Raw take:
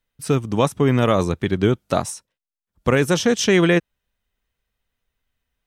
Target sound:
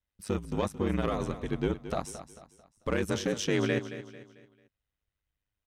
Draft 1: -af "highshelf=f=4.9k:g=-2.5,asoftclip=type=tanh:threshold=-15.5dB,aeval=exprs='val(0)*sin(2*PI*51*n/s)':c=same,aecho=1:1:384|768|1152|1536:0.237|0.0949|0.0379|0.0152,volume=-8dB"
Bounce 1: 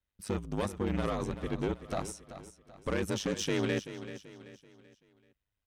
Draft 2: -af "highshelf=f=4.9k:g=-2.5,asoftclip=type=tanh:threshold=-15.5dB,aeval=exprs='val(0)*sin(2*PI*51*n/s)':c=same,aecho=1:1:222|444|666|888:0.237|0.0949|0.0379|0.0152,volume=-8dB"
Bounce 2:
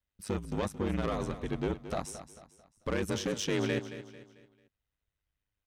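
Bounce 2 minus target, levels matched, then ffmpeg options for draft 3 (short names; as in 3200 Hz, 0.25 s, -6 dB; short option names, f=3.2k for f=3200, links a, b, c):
soft clip: distortion +8 dB
-af "highshelf=f=4.9k:g=-2.5,asoftclip=type=tanh:threshold=-8.5dB,aeval=exprs='val(0)*sin(2*PI*51*n/s)':c=same,aecho=1:1:222|444|666|888:0.237|0.0949|0.0379|0.0152,volume=-8dB"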